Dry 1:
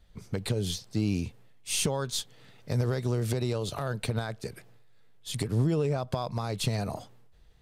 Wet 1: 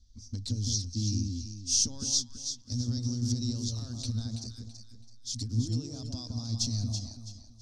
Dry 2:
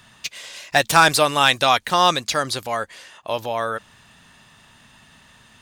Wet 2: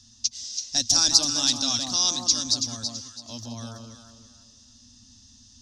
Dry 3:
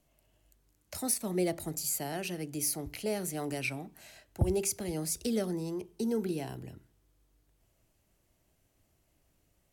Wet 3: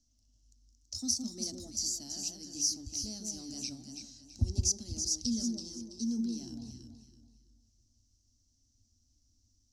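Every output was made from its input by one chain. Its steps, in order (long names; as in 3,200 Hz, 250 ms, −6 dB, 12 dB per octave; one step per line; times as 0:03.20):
drawn EQ curve 110 Hz 0 dB, 160 Hz −24 dB, 240 Hz +2 dB, 410 Hz −24 dB, 690 Hz −22 dB, 1,400 Hz −23 dB, 2,300 Hz −25 dB, 5,700 Hz +13 dB, 9,100 Hz −13 dB, 14,000 Hz −23 dB
delay that swaps between a low-pass and a high-pass 165 ms, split 1,100 Hz, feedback 55%, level −2 dB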